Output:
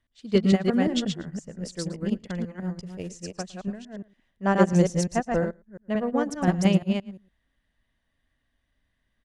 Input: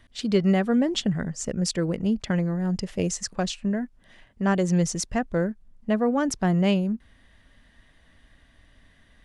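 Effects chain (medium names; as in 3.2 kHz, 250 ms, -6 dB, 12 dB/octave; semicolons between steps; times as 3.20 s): chunks repeated in reverse 175 ms, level -1.5 dB; 3.81–5.45 s: dynamic bell 680 Hz, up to +5 dB, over -38 dBFS, Q 0.91; delay 111 ms -14.5 dB; upward expansion 2.5:1, over -30 dBFS; trim +2 dB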